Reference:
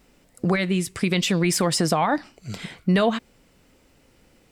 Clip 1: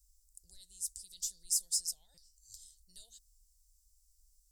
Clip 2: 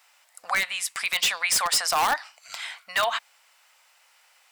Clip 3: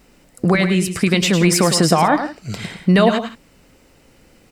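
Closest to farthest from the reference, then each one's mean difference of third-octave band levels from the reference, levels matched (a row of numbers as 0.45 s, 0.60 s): 3, 2, 1; 3.5 dB, 12.0 dB, 19.0 dB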